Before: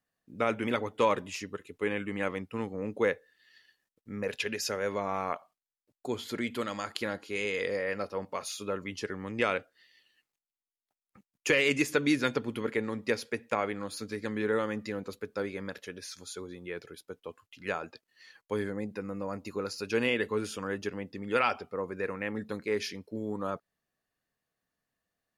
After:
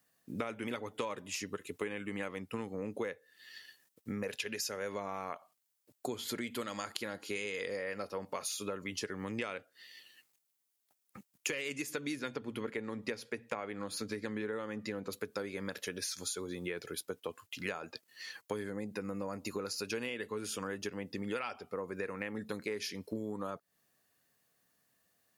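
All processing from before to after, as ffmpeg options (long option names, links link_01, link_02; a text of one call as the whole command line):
ffmpeg -i in.wav -filter_complex "[0:a]asettb=1/sr,asplit=3[link_01][link_02][link_03];[link_01]atrim=end=12.194[link_04];[link_02]atrim=start=12.19:end=15.12,asetpts=PTS-STARTPTS,afade=type=in:duration=0.004:curve=qsin,afade=type=out:start_time=2.926:duration=0.004:curve=qsin,highshelf=frequency=5300:gain=-9,bandreject=frequency=60:width_type=h:width=6,bandreject=frequency=120:width_type=h:width=6,bandreject=frequency=180:width_type=h:width=6[link_05];[link_03]atrim=start=15.116[link_06];[link_04][link_05]acrossfade=duration=0.004:curve1=hsin:curve2=qsin[link_07];[link_07][link_06]acrossfade=duration=0.004:curve1=qsin:curve2=hsin,highpass=81,highshelf=frequency=6000:gain=10,acompressor=threshold=-42dB:ratio=10,volume=7dB" out.wav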